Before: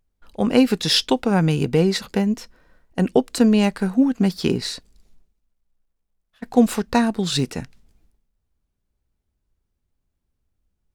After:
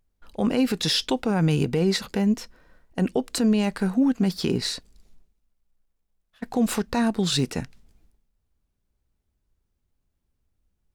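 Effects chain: peak limiter -13.5 dBFS, peak gain reduction 10 dB

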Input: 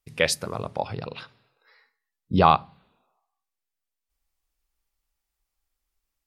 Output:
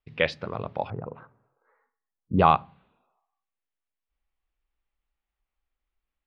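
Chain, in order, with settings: low-pass 3.5 kHz 24 dB/octave, from 0.90 s 1.3 kHz, from 2.39 s 3.2 kHz; trim -1.5 dB

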